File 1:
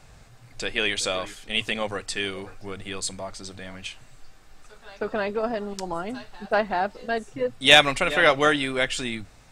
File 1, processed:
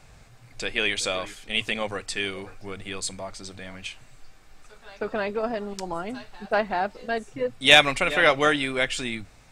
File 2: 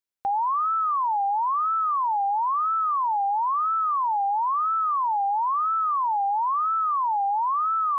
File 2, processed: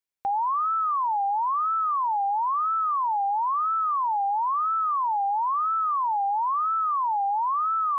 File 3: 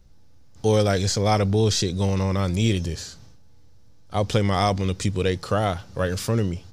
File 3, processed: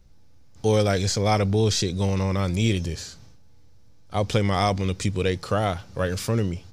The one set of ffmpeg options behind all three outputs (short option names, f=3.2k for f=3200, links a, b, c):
-af "equalizer=f=2.3k:w=5.9:g=3.5,volume=-1dB"